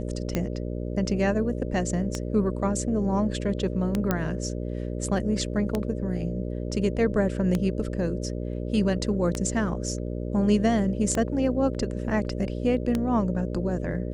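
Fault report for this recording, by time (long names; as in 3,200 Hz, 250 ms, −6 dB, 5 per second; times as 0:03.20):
mains buzz 60 Hz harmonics 10 −31 dBFS
scratch tick 33 1/3 rpm −12 dBFS
0:04.11: click −10 dBFS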